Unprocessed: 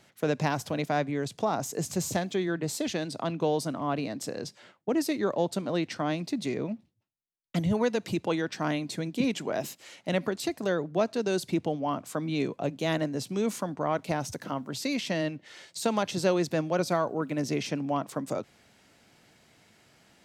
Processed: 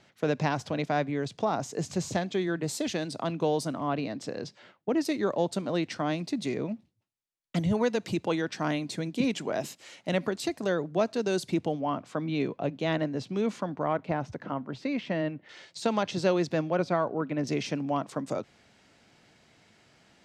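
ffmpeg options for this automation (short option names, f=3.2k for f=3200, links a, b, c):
-af "asetnsamples=n=441:p=0,asendcmd='2.35 lowpass f 11000;3.88 lowpass f 4900;5.05 lowpass f 10000;11.81 lowpass f 3900;13.93 lowpass f 2200;15.49 lowpass f 5400;16.7 lowpass f 3100;17.47 lowpass f 7200',lowpass=5.7k"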